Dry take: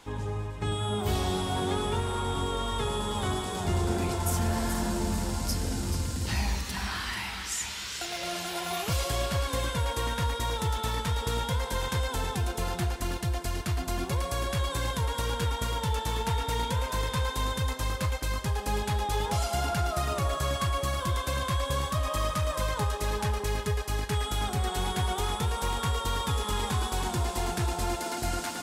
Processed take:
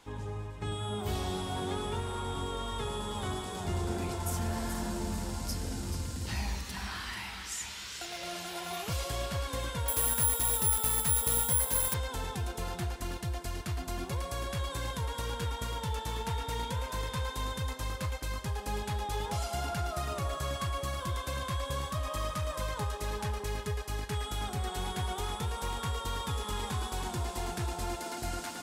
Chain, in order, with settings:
0:09.88–0:11.94: bad sample-rate conversion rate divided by 4×, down none, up zero stuff
level −5.5 dB

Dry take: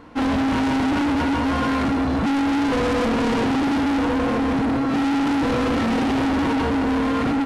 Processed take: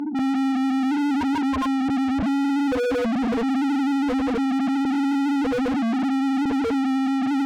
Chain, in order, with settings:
spectral peaks only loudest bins 2
mid-hump overdrive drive 42 dB, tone 2,300 Hz, clips at −17.5 dBFS

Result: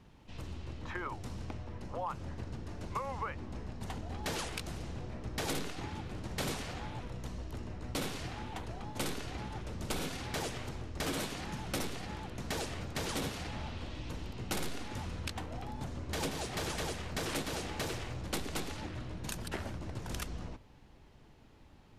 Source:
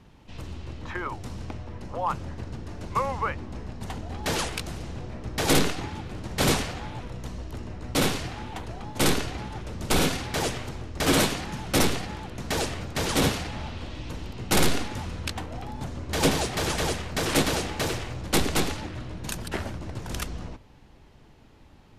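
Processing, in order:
downward compressor 6 to 1, threshold −28 dBFS, peak gain reduction 11.5 dB
level −5.5 dB

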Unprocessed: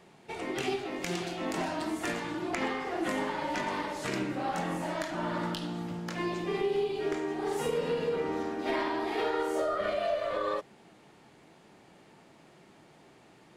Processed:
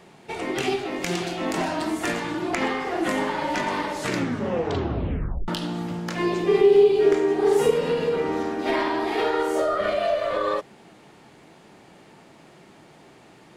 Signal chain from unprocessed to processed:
0:04.06: tape stop 1.42 s
0:06.21–0:07.71: parametric band 420 Hz +9 dB 0.34 octaves
level +7 dB

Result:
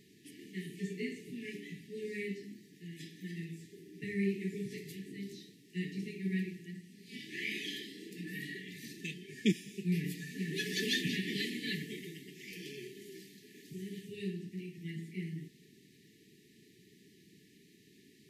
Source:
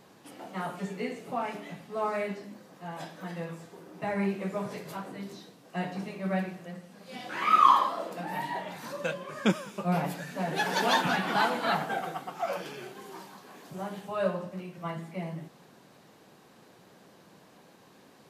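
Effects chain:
linear-phase brick-wall band-stop 450–1,700 Hz
level −3 dB

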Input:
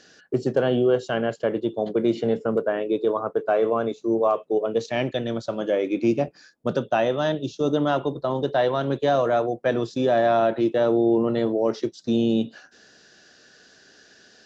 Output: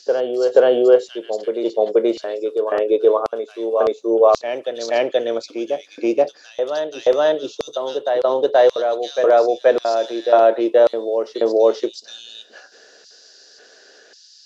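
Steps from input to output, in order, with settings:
auto-filter high-pass square 0.92 Hz 480–4,700 Hz
backwards echo 478 ms −6.5 dB
level +3 dB

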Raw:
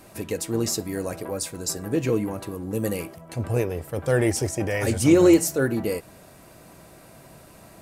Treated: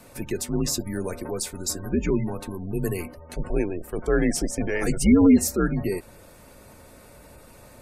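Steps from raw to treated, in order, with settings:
frequency shifter −85 Hz
gate on every frequency bin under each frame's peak −30 dB strong

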